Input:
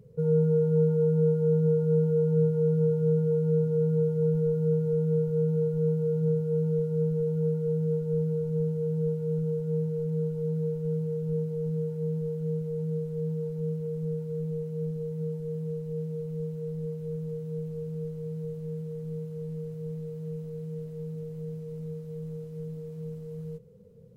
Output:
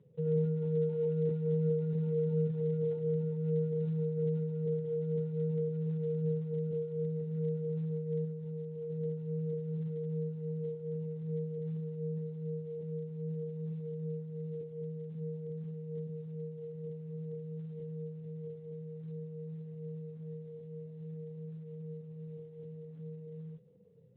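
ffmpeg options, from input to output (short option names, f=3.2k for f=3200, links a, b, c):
-filter_complex "[0:a]flanger=delay=5.2:depth=3.9:regen=-32:speed=0.51:shape=triangular,asettb=1/sr,asplit=3[a][b][c];[a]atrim=end=8.244[d];[b]atrim=start=8.24:end=8.9,asetpts=PTS-STARTPTS,afade=t=in:d=0.004:c=qsin,afade=t=out:st=0.656:d=0.004:c=qsin,acompressor=threshold=-32dB:ratio=12[e];[c]atrim=start=8.896[f];[d][e]acrossfade=d=0.004:c1=hsin:c2=qsin[g];[g][f]acrossfade=d=0.004:c1=qsin:c2=hsin,volume=-5dB" -ar 8000 -c:a libspeex -b:a 11k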